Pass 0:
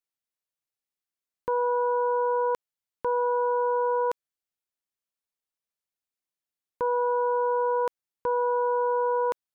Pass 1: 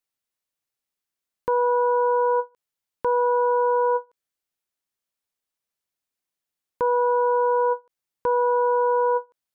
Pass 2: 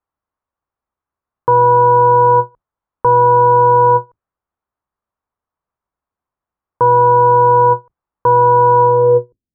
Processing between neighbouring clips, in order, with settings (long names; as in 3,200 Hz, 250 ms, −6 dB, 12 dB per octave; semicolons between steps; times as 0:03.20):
every ending faded ahead of time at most 400 dB per second; level +4.5 dB
sub-octave generator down 2 octaves, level +3 dB; low-pass filter sweep 1,100 Hz → 250 Hz, 0:08.76–0:09.51; level +6 dB